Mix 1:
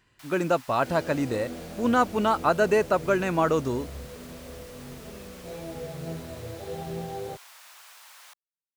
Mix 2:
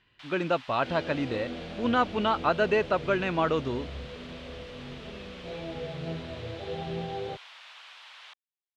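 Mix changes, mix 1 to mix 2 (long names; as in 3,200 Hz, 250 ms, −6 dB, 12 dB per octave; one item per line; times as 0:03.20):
speech −3.5 dB
master: add low-pass with resonance 3,300 Hz, resonance Q 2.3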